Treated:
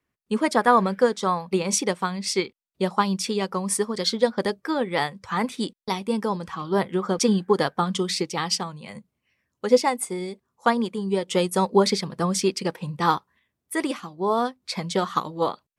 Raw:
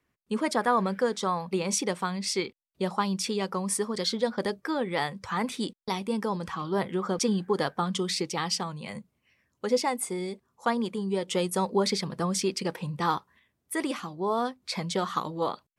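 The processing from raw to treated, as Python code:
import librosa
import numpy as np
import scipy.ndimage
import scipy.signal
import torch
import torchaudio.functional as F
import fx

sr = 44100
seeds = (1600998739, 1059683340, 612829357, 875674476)

y = fx.upward_expand(x, sr, threshold_db=-43.0, expansion=1.5)
y = F.gain(torch.from_numpy(y), 8.5).numpy()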